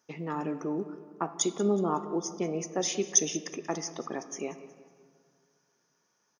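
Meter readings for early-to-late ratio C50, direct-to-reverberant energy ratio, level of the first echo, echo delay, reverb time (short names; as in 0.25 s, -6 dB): 11.5 dB, 9.5 dB, -18.5 dB, 0.184 s, 2.0 s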